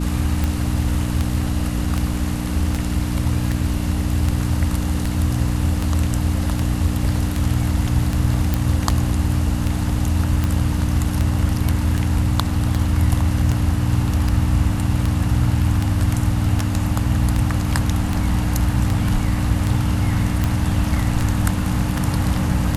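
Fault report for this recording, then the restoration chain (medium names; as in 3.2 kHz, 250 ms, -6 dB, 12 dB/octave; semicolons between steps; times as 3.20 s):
hum 60 Hz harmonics 5 -23 dBFS
tick 78 rpm -8 dBFS
8.54 s: pop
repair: de-click; de-hum 60 Hz, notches 5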